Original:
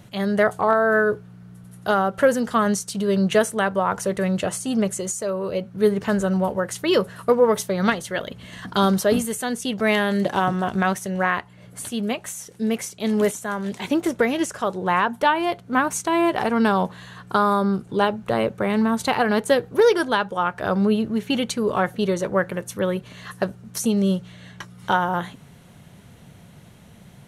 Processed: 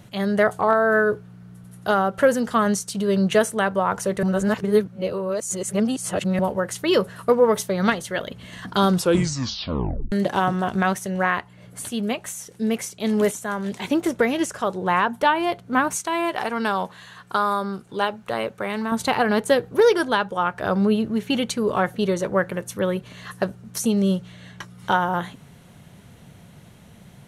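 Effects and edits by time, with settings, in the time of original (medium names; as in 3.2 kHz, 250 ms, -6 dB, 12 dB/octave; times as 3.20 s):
4.23–6.39 s: reverse
8.89 s: tape stop 1.23 s
15.95–18.92 s: bass shelf 480 Hz -10 dB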